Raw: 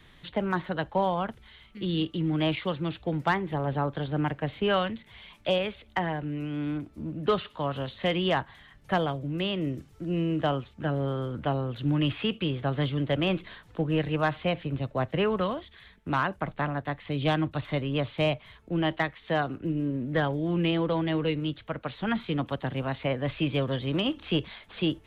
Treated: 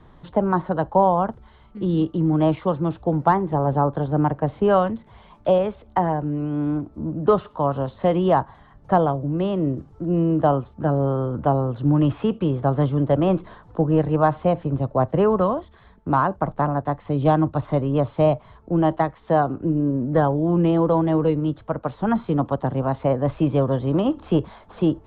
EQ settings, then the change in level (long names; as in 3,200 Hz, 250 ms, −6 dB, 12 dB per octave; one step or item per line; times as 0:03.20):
high-frequency loss of the air 63 metres
high shelf with overshoot 1,500 Hz −13.5 dB, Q 1.5
+7.5 dB